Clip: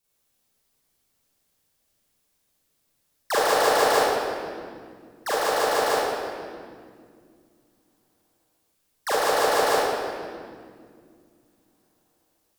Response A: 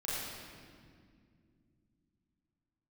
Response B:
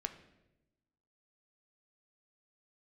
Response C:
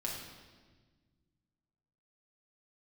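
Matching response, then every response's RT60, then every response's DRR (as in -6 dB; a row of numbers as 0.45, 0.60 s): A; not exponential, 0.95 s, 1.4 s; -9.0, 7.0, -3.5 dB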